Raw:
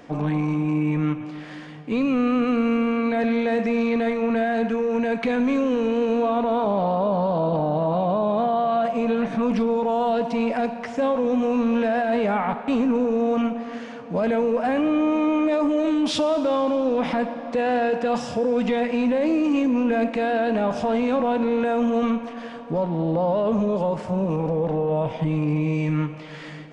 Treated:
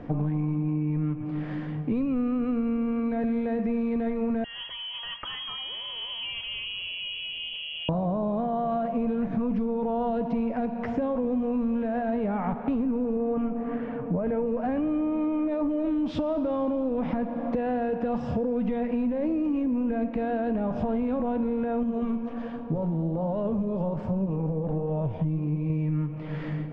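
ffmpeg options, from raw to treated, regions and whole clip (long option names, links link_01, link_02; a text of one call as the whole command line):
ffmpeg -i in.wav -filter_complex "[0:a]asettb=1/sr,asplit=3[link_01][link_02][link_03];[link_01]atrim=end=4.444[link_04];[link_02]atrim=start=4.44:end=7.89,asetpts=PTS-STARTPTS,afade=type=in:duration=0.004:curve=qsin,afade=type=out:start_time=3.446:duration=0.004:curve=qsin,highpass=frequency=520:poles=1,equalizer=frequency=1800:width_type=o:width=2.9:gain=-6,lowpass=frequency=3000:width_type=q:width=0.5098,lowpass=frequency=3000:width_type=q:width=0.6013,lowpass=frequency=3000:width_type=q:width=0.9,lowpass=frequency=3000:width_type=q:width=2.563,afreqshift=-3500[link_05];[link_03]atrim=start=7.886[link_06];[link_04][link_05]acrossfade=duration=0.004:curve1=hsin:curve2=qsin[link_07];[link_07][link_06]acrossfade=duration=0.004:curve1=qsin:curve2=hsin,asettb=1/sr,asplit=3[link_08][link_09][link_10];[link_08]atrim=end=13.164[link_11];[link_09]atrim=start=13.16:end=14.46,asetpts=PTS-STARTPTS,afade=type=in:duration=0.004:curve=qsin,afade=type=out:start_time=1.296:duration=0.004:curve=qsin,lowpass=2400,aecho=1:1:6.7:0.33,atrim=end_sample=57330[link_12];[link_10]atrim=start=14.456[link_13];[link_11][link_12]acrossfade=duration=0.004:curve1=hsin:curve2=qsin[link_14];[link_14][link_13]acrossfade=duration=0.004:curve1=qsin:curve2=hsin,asettb=1/sr,asplit=3[link_15][link_16][link_17];[link_15]atrim=end=21.834[link_18];[link_16]atrim=start=21.83:end=25.7,asetpts=PTS-STARTPTS,afade=type=in:duration=0.004:curve=qsin,afade=type=out:start_time=3.866:duration=0.004:curve=qsin,highshelf=frequency=5600:gain=8,bandreject=frequency=2000:width=18,flanger=delay=3.7:depth=9.4:regen=75:speed=1.3:shape=sinusoidal[link_19];[link_17]atrim=start=25.696[link_20];[link_18][link_19]acrossfade=duration=0.004:curve1=hsin:curve2=qsin[link_21];[link_21][link_20]acrossfade=duration=0.004:curve1=qsin:curve2=hsin,lowpass=frequency=2900:poles=1,aemphasis=mode=reproduction:type=riaa,acompressor=threshold=-25dB:ratio=6" out.wav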